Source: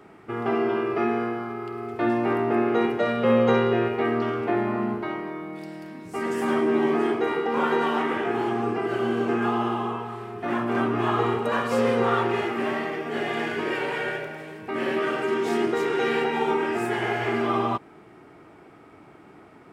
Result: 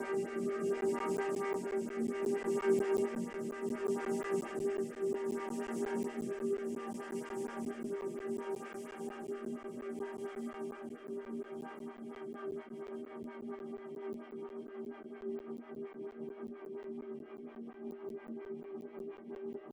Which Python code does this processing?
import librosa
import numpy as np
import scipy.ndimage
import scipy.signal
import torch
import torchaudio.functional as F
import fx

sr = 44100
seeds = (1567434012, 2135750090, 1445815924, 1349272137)

p1 = fx.over_compress(x, sr, threshold_db=-30.0, ratio=-0.5)
p2 = fx.low_shelf(p1, sr, hz=340.0, db=5.0)
p3 = fx.paulstretch(p2, sr, seeds[0], factor=39.0, window_s=0.5, from_s=6.28)
p4 = p3 + 0.45 * np.pad(p3, (int(5.0 * sr / 1000.0), 0))[:len(p3)]
p5 = p4 + fx.echo_single(p4, sr, ms=383, db=-21.0, dry=0)
p6 = fx.dynamic_eq(p5, sr, hz=6900.0, q=0.98, threshold_db=-57.0, ratio=4.0, max_db=6)
p7 = fx.rotary_switch(p6, sr, hz=0.65, then_hz=5.5, switch_at_s=11.58)
p8 = fx.buffer_crackle(p7, sr, first_s=0.81, period_s=0.18, block=512, kind='zero')
p9 = fx.stagger_phaser(p8, sr, hz=4.3)
y = F.gain(torch.from_numpy(p9), -5.0).numpy()